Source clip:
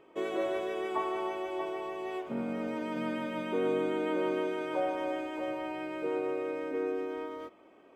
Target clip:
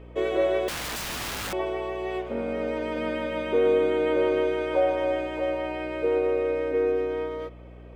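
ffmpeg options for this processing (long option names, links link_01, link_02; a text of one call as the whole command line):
ffmpeg -i in.wav -filter_complex "[0:a]equalizer=frequency=125:width_type=o:width=1:gain=-6,equalizer=frequency=500:width_type=o:width=1:gain=11,equalizer=frequency=2000:width_type=o:width=1:gain=6,equalizer=frequency=4000:width_type=o:width=1:gain=6,asettb=1/sr,asplit=3[link_01][link_02][link_03];[link_01]atrim=end=0.684[link_04];[link_02]atrim=start=0.68:end=1.53,asetpts=PTS-STARTPTS,afade=type=in:duration=0.004:curve=qsin,afade=type=out:start_time=0.846:duration=0.004:curve=qsin,aeval=exprs='(mod(25.1*val(0)+1,2)-1)/25.1':channel_layout=same[link_05];[link_03]atrim=start=1.526[link_06];[link_04][link_05]acrossfade=duration=0.004:curve1=hsin:curve2=qsin[link_07];[link_07][link_06]acrossfade=duration=0.004:curve1=qsin:curve2=hsin,aeval=exprs='val(0)+0.00631*(sin(2*PI*60*n/s)+sin(2*PI*2*60*n/s)/2+sin(2*PI*3*60*n/s)/3+sin(2*PI*4*60*n/s)/4+sin(2*PI*5*60*n/s)/5)':channel_layout=same" out.wav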